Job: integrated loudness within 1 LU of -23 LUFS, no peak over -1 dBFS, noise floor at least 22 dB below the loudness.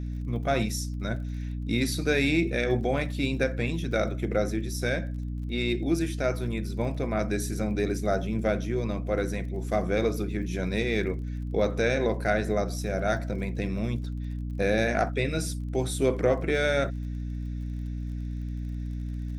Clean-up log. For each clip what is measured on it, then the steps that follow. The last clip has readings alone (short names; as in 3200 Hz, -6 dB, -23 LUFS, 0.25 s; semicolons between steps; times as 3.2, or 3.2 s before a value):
ticks 39/s; hum 60 Hz; harmonics up to 300 Hz; hum level -30 dBFS; loudness -28.5 LUFS; peak -10.5 dBFS; loudness target -23.0 LUFS
-> de-click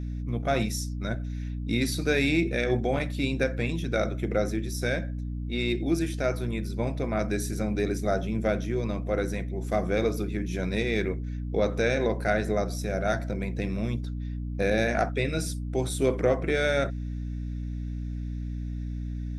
ticks 0.052/s; hum 60 Hz; harmonics up to 300 Hz; hum level -30 dBFS
-> de-hum 60 Hz, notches 5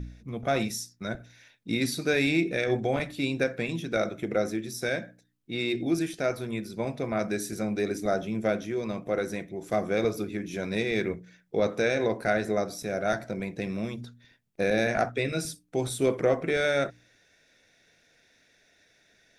hum none; loudness -29.0 LUFS; peak -11.5 dBFS; loudness target -23.0 LUFS
-> gain +6 dB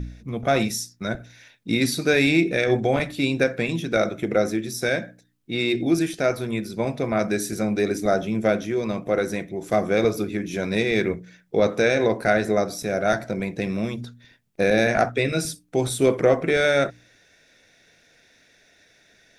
loudness -23.0 LUFS; peak -5.5 dBFS; noise floor -59 dBFS